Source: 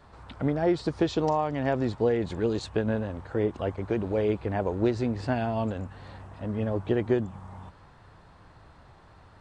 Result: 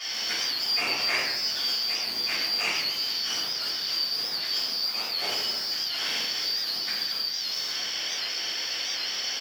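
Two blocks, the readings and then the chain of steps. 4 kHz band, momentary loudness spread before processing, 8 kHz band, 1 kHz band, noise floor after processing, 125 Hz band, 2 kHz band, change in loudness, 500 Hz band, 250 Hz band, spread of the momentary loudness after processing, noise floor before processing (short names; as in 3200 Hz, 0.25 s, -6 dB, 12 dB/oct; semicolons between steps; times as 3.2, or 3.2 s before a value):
+23.5 dB, 12 LU, n/a, -4.5 dB, -32 dBFS, under -20 dB, +9.5 dB, +2.5 dB, -16.0 dB, -19.5 dB, 4 LU, -54 dBFS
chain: four-band scrambler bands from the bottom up 4321; brick-wall FIR low-pass 7100 Hz; low shelf 350 Hz -11 dB; echo 97 ms -22.5 dB; compressor 2.5:1, threshold -40 dBFS, peak gain reduction 14 dB; bell 4500 Hz -10 dB 0.31 oct; overdrive pedal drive 35 dB, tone 1800 Hz, clips at -27 dBFS; HPF 220 Hz 12 dB/oct; shoebox room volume 350 m³, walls mixed, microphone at 6.3 m; record warp 78 rpm, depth 100 cents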